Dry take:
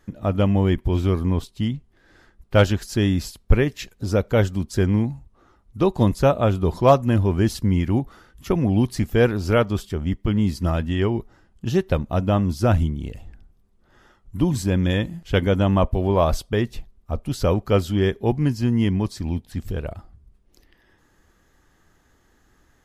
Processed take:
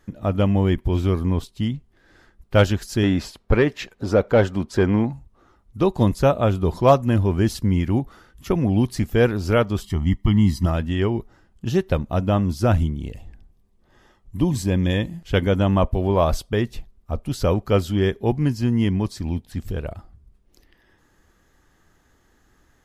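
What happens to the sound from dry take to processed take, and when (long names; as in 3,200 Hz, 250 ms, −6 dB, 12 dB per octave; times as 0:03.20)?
0:03.03–0:05.13: mid-hump overdrive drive 17 dB, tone 1,100 Hz, clips at −3.5 dBFS
0:09.82–0:10.66: comb filter 1 ms, depth 82%
0:13.01–0:15.20: notch filter 1,400 Hz, Q 5.3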